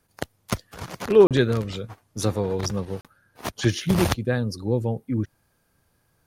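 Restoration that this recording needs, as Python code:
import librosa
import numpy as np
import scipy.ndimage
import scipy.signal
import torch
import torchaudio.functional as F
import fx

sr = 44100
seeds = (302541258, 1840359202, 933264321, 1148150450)

y = fx.fix_interpolate(x, sr, at_s=(1.27, 3.01), length_ms=37.0)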